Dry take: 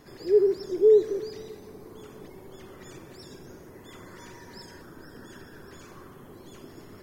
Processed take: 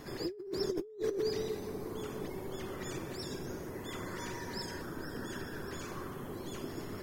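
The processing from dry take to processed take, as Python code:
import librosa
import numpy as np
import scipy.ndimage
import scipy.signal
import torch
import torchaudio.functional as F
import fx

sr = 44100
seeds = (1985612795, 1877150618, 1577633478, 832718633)

y = fx.over_compress(x, sr, threshold_db=-35.0, ratio=-1.0)
y = y * 10.0 ** (-2.5 / 20.0)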